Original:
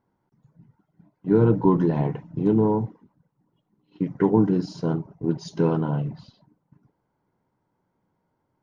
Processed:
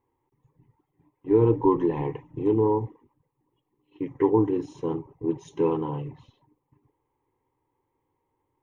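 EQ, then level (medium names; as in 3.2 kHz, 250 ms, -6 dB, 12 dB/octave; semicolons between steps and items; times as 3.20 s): static phaser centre 970 Hz, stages 8; +1.0 dB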